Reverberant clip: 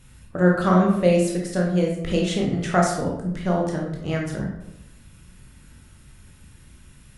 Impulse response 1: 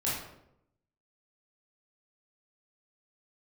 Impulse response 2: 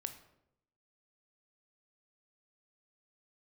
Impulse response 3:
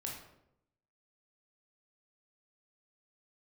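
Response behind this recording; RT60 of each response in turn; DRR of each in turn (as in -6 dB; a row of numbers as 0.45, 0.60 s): 3; 0.80, 0.80, 0.80 s; -8.0, 8.0, -1.5 dB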